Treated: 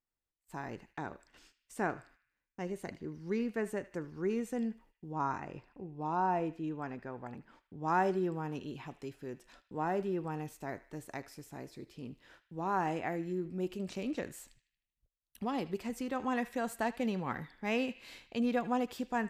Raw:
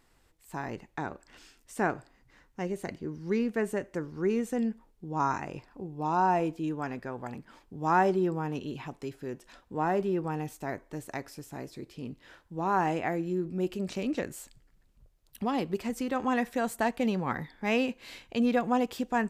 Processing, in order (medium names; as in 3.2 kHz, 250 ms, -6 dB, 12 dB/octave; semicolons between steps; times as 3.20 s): gate -54 dBFS, range -24 dB; 5.12–7.88 s: treble shelf 4.6 kHz -11 dB; band-passed feedback delay 77 ms, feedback 58%, band-pass 2.7 kHz, level -15 dB; trim -5.5 dB